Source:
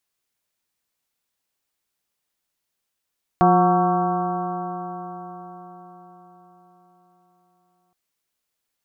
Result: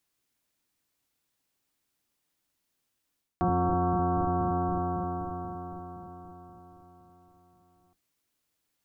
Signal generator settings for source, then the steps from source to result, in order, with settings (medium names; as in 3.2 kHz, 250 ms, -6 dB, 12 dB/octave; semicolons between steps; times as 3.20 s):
stretched partials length 4.52 s, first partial 176 Hz, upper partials -2/-14/3.5/-7/-2.5/-11/-20 dB, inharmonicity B 0.0037, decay 4.91 s, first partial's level -17.5 dB
octave divider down 1 oct, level +1 dB; peaking EQ 290 Hz +7 dB 0.51 oct; reverse; compression 6:1, threshold -24 dBFS; reverse